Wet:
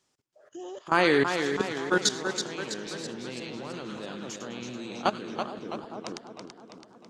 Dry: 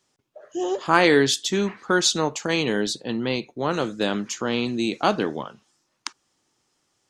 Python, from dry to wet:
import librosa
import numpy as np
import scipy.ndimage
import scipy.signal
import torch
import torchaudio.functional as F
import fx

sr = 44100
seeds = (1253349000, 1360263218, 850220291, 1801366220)

y = fx.echo_split(x, sr, split_hz=1200.0, low_ms=441, high_ms=102, feedback_pct=52, wet_db=-7.5)
y = fx.level_steps(y, sr, step_db=18)
y = fx.echo_warbled(y, sr, ms=329, feedback_pct=54, rate_hz=2.8, cents=88, wet_db=-7)
y = y * 10.0 ** (-3.0 / 20.0)